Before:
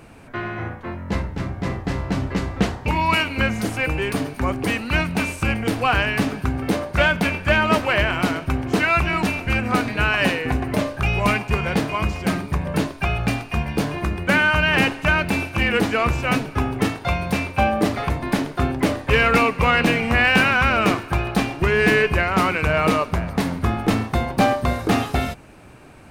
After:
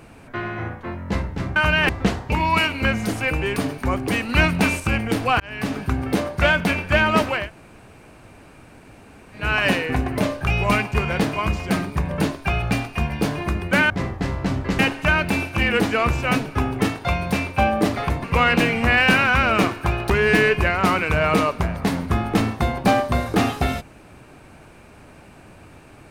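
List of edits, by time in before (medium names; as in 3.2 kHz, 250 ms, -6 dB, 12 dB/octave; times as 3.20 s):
1.56–2.45 s: swap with 14.46–14.79 s
4.85–5.36 s: gain +3.5 dB
5.96–6.38 s: fade in
7.95–9.99 s: room tone, crossfade 0.24 s
18.24–19.51 s: delete
21.37–21.63 s: delete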